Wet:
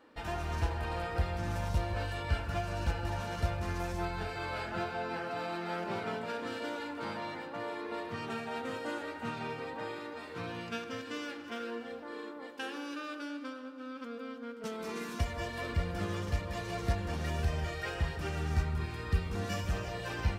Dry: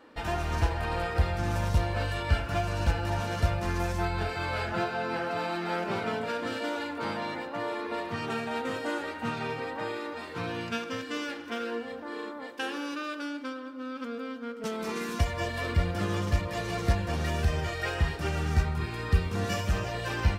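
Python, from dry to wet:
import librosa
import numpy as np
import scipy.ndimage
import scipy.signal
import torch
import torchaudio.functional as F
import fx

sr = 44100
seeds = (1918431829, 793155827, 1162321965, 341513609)

y = fx.echo_alternate(x, sr, ms=166, hz=1200.0, feedback_pct=60, wet_db=-10.5)
y = F.gain(torch.from_numpy(y), -6.0).numpy()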